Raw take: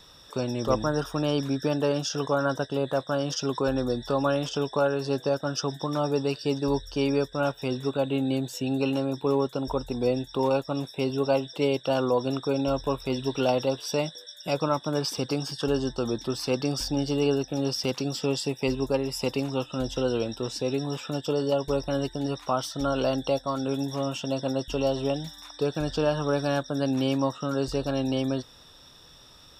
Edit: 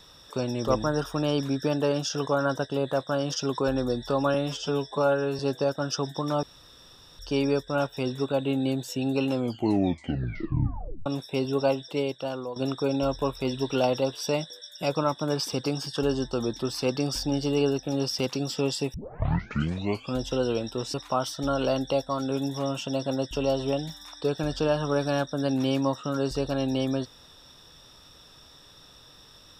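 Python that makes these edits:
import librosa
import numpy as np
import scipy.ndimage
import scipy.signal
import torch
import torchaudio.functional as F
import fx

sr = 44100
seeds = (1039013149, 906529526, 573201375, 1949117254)

y = fx.edit(x, sr, fx.stretch_span(start_s=4.34, length_s=0.7, factor=1.5),
    fx.room_tone_fill(start_s=6.08, length_s=0.76),
    fx.tape_stop(start_s=8.93, length_s=1.78),
    fx.fade_out_to(start_s=11.32, length_s=0.89, floor_db=-13.5),
    fx.tape_start(start_s=18.59, length_s=1.23),
    fx.cut(start_s=20.59, length_s=1.72), tone=tone)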